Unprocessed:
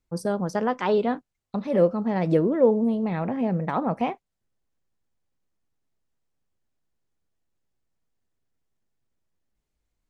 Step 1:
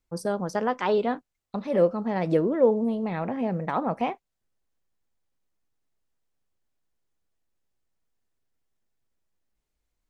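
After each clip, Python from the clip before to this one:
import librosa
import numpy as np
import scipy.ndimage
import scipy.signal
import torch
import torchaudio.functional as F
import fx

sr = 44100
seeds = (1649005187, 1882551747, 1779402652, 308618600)

y = fx.peak_eq(x, sr, hz=130.0, db=-4.5, octaves=2.5)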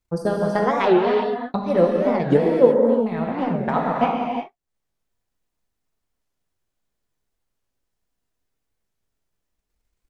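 y = fx.transient(x, sr, attack_db=8, sustain_db=-9)
y = fx.rev_gated(y, sr, seeds[0], gate_ms=390, shape='flat', drr_db=-1.5)
y = fx.record_warp(y, sr, rpm=45.0, depth_cents=250.0)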